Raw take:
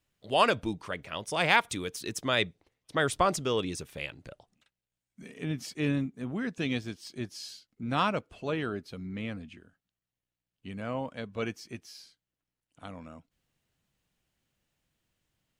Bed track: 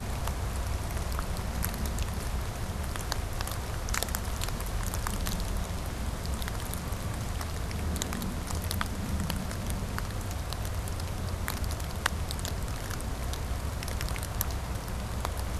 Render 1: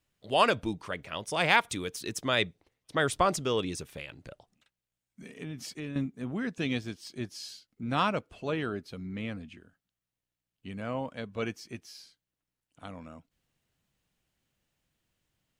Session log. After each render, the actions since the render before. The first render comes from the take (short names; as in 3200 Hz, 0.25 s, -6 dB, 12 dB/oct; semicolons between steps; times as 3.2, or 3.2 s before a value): 3.87–5.96 compressor 5:1, threshold -35 dBFS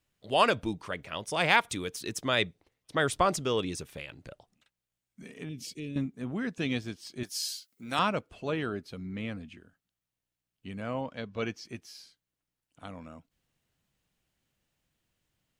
5.49–5.97 band shelf 1100 Hz -15.5 dB; 7.23–7.99 RIAA curve recording; 11.01–11.65 resonant high shelf 7100 Hz -8 dB, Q 1.5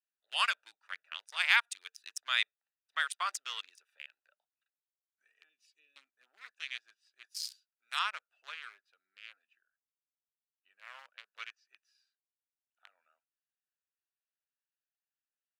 Wiener smoothing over 41 samples; HPF 1300 Hz 24 dB/oct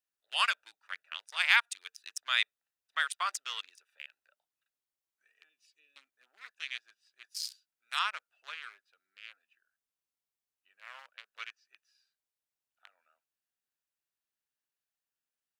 gain +1.5 dB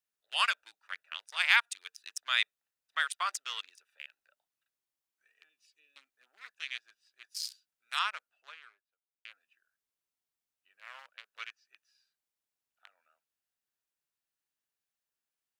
8.01–9.25 studio fade out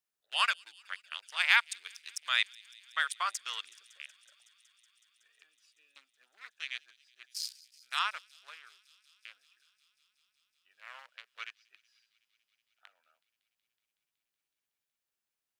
thin delay 0.186 s, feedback 83%, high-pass 3800 Hz, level -20 dB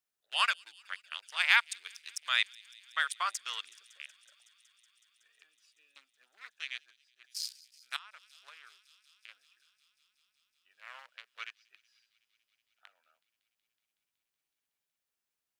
6.59–7.24 fade out, to -6.5 dB; 7.96–9.29 compressor 20:1, threshold -46 dBFS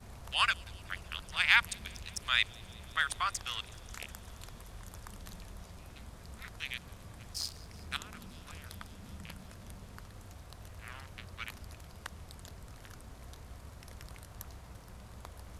add bed track -16 dB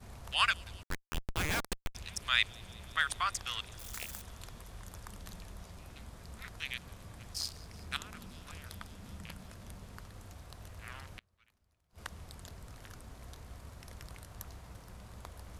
0.83–1.95 Schmitt trigger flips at -32.5 dBFS; 3.79–4.22 switching spikes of -37.5 dBFS; 11.18–11.98 flipped gate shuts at -40 dBFS, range -28 dB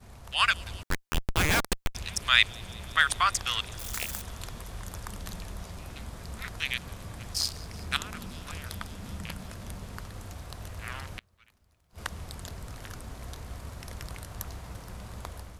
AGC gain up to 8.5 dB